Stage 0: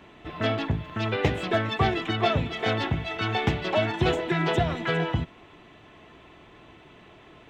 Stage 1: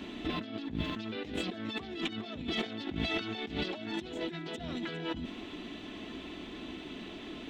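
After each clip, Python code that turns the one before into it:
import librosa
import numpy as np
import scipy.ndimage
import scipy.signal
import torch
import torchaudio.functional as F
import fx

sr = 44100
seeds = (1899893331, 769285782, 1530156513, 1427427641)

y = fx.graphic_eq_10(x, sr, hz=(125, 250, 500, 1000, 2000, 4000), db=(-12, 12, -4, -6, -3, 7))
y = fx.over_compress(y, sr, threshold_db=-36.0, ratio=-1.0)
y = y * 10.0 ** (-2.0 / 20.0)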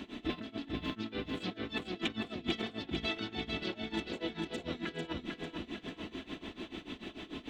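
y = x * (1.0 - 0.9 / 2.0 + 0.9 / 2.0 * np.cos(2.0 * np.pi * 6.8 * (np.arange(len(x)) / sr)))
y = fx.echo_feedback(y, sr, ms=447, feedback_pct=51, wet_db=-4.5)
y = y * 10.0 ** (1.0 / 20.0)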